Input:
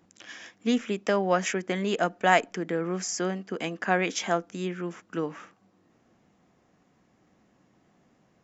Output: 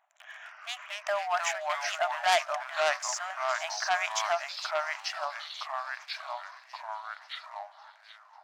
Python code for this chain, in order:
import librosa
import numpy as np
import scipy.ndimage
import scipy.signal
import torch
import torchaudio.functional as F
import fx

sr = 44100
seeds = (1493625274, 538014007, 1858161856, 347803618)

p1 = fx.wiener(x, sr, points=9)
p2 = p1 + fx.echo_wet_highpass(p1, sr, ms=459, feedback_pct=55, hz=2800.0, wet_db=-13, dry=0)
p3 = fx.echo_pitch(p2, sr, ms=103, semitones=-3, count=3, db_per_echo=-3.0)
p4 = fx.brickwall_highpass(p3, sr, low_hz=590.0)
y = fx.transformer_sat(p4, sr, knee_hz=3700.0)